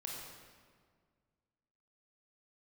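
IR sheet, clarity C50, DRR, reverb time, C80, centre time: 0.0 dB, −2.5 dB, 1.8 s, 2.0 dB, 90 ms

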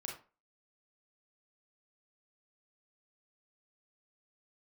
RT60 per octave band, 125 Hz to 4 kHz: 0.30, 0.35, 0.35, 0.35, 0.30, 0.25 seconds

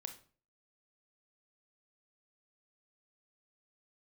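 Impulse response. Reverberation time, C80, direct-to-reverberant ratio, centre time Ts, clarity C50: 0.45 s, 16.5 dB, 6.5 dB, 11 ms, 11.0 dB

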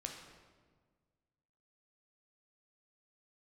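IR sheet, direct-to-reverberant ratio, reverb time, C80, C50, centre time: 1.5 dB, 1.6 s, 6.0 dB, 4.5 dB, 44 ms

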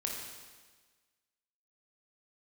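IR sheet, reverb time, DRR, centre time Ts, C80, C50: 1.4 s, −1.5 dB, 69 ms, 3.5 dB, 1.5 dB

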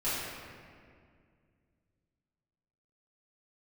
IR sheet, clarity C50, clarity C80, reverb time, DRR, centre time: −2.5 dB, 0.0 dB, 2.1 s, −14.5 dB, 130 ms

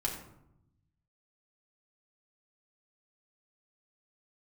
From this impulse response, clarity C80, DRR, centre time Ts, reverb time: 8.5 dB, −3.0 dB, 30 ms, 0.80 s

